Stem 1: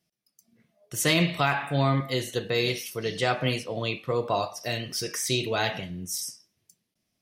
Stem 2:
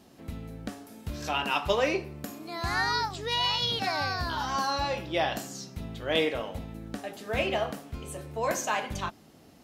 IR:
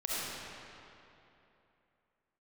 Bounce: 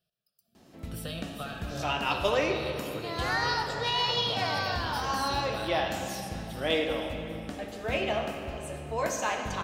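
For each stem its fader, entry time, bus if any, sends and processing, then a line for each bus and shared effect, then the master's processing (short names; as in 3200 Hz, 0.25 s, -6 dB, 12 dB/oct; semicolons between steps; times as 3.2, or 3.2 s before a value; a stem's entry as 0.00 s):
-2.5 dB, 0.00 s, send -12 dB, echo send -7 dB, compressor 6:1, threshold -33 dBFS, peak gain reduction 14 dB; fixed phaser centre 1400 Hz, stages 8
-4.0 dB, 0.55 s, send -8 dB, no echo send, dry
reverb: on, RT60 3.0 s, pre-delay 25 ms
echo: feedback echo 0.4 s, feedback 52%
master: bell 12000 Hz -5 dB 0.51 oct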